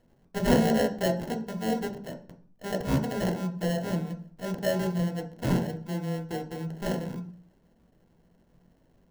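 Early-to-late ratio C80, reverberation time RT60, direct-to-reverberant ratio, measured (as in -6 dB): 15.5 dB, 0.45 s, 2.0 dB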